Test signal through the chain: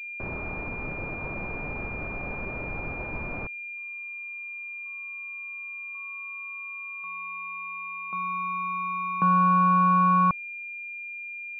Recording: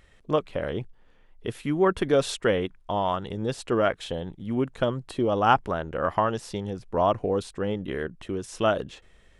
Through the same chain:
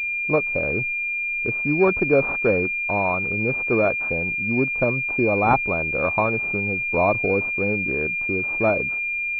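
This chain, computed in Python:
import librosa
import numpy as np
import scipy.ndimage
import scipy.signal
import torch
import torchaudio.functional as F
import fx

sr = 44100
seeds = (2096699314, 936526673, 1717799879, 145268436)

y = fx.pwm(x, sr, carrier_hz=2400.0)
y = y * librosa.db_to_amplitude(3.5)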